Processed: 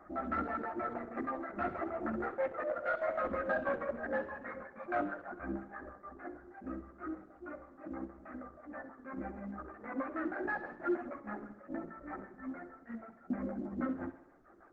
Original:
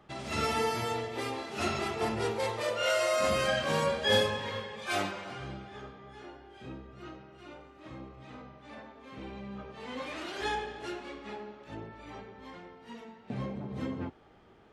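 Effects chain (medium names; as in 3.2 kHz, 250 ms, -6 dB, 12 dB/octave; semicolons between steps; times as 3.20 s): 9.85–11.97 s: high-pass 110 Hz 12 dB/octave; reverb removal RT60 1 s; peaking EQ 1.5 kHz -5 dB 0.32 oct; compression 2.5:1, threshold -36 dBFS, peak gain reduction 9.5 dB; LFO low-pass square 6.3 Hz 350–1500 Hz; static phaser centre 640 Hz, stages 8; chorus voices 4, 0.34 Hz, delay 14 ms, depth 2.8 ms; overdrive pedal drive 10 dB, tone 2.7 kHz, clips at -27.5 dBFS; tape spacing loss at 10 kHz 31 dB; tape echo 66 ms, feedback 61%, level -12.5 dB, low-pass 5.7 kHz; trim +8.5 dB; Opus 12 kbps 48 kHz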